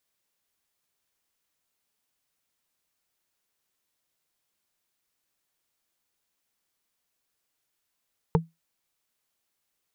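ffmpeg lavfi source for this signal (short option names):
-f lavfi -i "aevalsrc='0.178*pow(10,-3*t/0.19)*sin(2*PI*164*t)+0.168*pow(10,-3*t/0.056)*sin(2*PI*452.1*t)+0.158*pow(10,-3*t/0.025)*sin(2*PI*886.3*t)':d=0.45:s=44100"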